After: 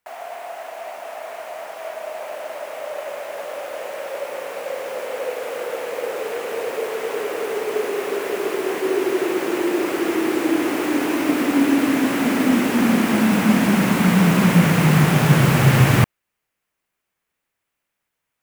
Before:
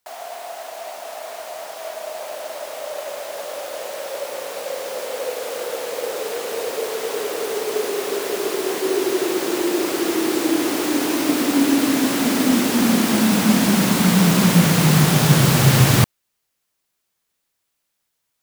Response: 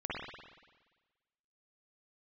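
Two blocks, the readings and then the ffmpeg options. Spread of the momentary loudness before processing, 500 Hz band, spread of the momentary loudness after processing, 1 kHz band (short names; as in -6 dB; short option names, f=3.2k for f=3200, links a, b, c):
17 LU, 0.0 dB, 17 LU, +0.5 dB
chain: -af "highshelf=f=3.1k:t=q:w=1.5:g=-7"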